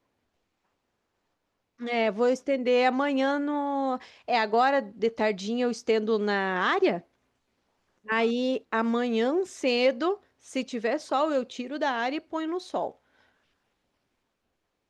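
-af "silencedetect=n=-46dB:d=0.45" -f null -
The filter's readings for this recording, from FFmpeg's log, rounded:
silence_start: 0.00
silence_end: 1.80 | silence_duration: 1.80
silence_start: 7.01
silence_end: 8.06 | silence_duration: 1.05
silence_start: 12.92
silence_end: 14.89 | silence_duration: 1.97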